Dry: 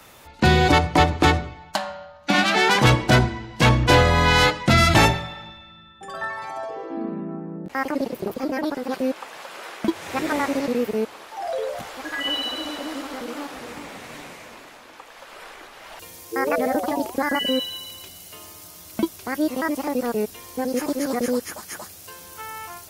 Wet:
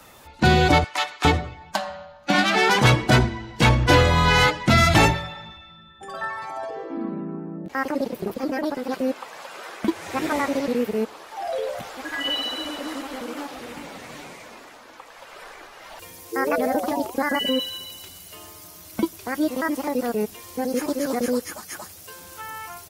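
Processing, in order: bin magnitudes rounded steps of 15 dB; 0.84–1.25 HPF 1300 Hz 12 dB/oct; speakerphone echo 0.1 s, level -29 dB

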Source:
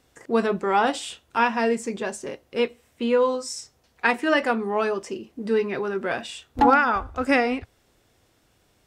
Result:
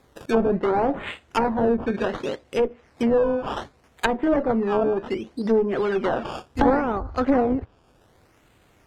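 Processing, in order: one-sided clip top -25.5 dBFS; decimation with a swept rate 15×, swing 100% 0.67 Hz; treble ducked by the level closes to 680 Hz, closed at -21.5 dBFS; gain +5.5 dB

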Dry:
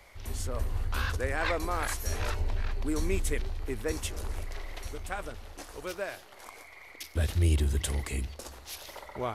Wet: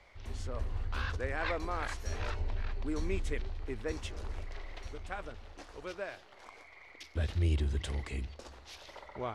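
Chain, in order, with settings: LPF 4900 Hz 12 dB/oct; gain -4.5 dB

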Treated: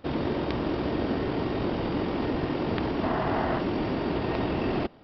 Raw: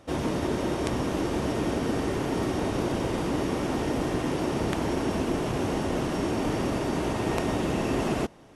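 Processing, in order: spectral gain 5.16–6.1, 620–2100 Hz +7 dB; tempo 1.7×; downsampling 11025 Hz

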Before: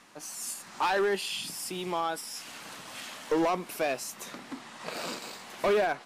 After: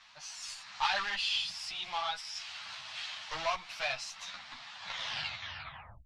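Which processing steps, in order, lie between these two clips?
tape stop at the end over 1.37 s; added harmonics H 4 -17 dB, 6 -24 dB, 8 -35 dB, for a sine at -21.5 dBFS; EQ curve 110 Hz 0 dB, 220 Hz -18 dB, 410 Hz -29 dB, 660 Hz -4 dB, 4000 Hz +8 dB, 5700 Hz +2 dB, 12000 Hz -24 dB; ensemble effect

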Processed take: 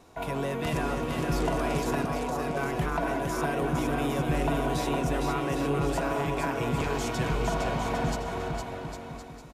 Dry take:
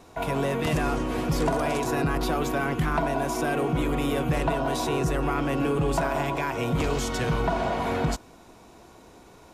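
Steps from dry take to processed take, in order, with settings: 2.05–2.57 Chebyshev band-pass 460–1000 Hz, order 2; bouncing-ball echo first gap 0.46 s, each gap 0.75×, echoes 5; gain -4.5 dB

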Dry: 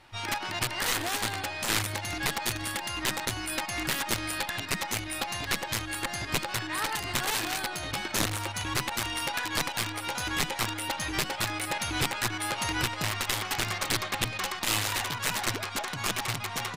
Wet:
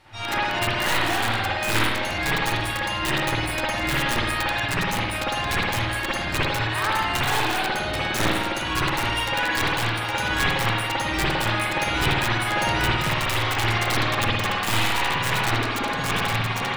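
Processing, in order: tracing distortion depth 0.04 ms; spring tank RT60 1.1 s, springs 53 ms, chirp 30 ms, DRR -8.5 dB; short-mantissa float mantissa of 8-bit

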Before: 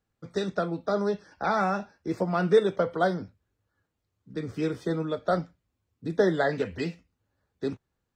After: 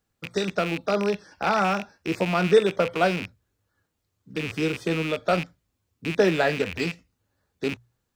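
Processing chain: rattling part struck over -40 dBFS, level -25 dBFS; high shelf 3800 Hz +6.5 dB; notches 60/120 Hz; gain +2.5 dB

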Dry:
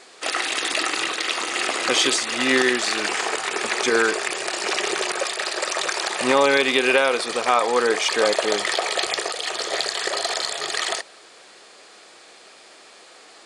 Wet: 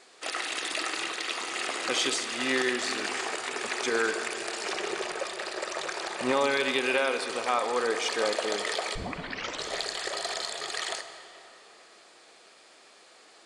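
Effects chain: 4.72–6.33 tilt -1.5 dB/oct; 8.95 tape start 0.70 s; reverb RT60 3.6 s, pre-delay 49 ms, DRR 9 dB; gain -8.5 dB

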